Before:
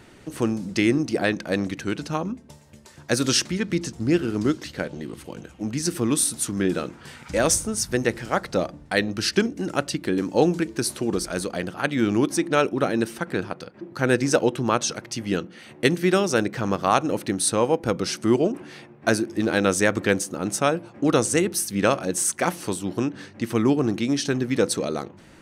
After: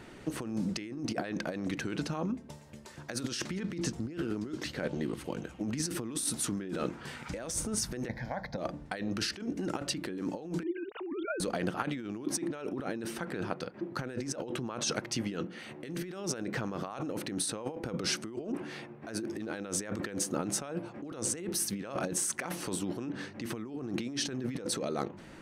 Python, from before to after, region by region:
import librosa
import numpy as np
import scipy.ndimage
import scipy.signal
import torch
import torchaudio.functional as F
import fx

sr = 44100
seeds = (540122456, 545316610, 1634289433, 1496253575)

y = fx.chain(x, sr, fx.high_shelf(hz=2700.0, db=-10.0),
    fx.fixed_phaser(hz=1900.0, stages=8), at=(8.08, 8.58))
y = fx.chain(y, sr, fx.sine_speech(),
    fx.band_squash(depth_pct=100), at=(10.63, 11.4))
y = fx.high_shelf(y, sr, hz=3900.0, db=-5.5)
y = fx.over_compress(y, sr, threshold_db=-30.0, ratio=-1.0)
y = fx.peak_eq(y, sr, hz=86.0, db=-5.0, octaves=0.84)
y = F.gain(torch.from_numpy(y), -5.5).numpy()